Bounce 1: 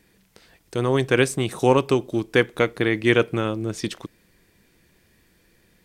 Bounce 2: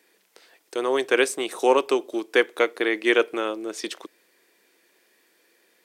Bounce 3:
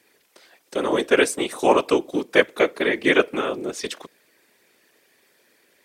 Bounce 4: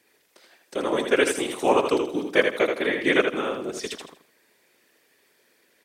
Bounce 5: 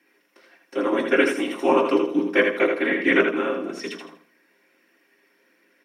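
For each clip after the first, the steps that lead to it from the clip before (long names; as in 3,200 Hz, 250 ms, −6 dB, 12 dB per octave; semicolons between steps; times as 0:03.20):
high-pass filter 340 Hz 24 dB per octave
random phases in short frames; level +2 dB
repeating echo 80 ms, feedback 29%, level −5.5 dB; level −3.5 dB
convolution reverb RT60 0.15 s, pre-delay 3 ms, DRR 4 dB; level −8 dB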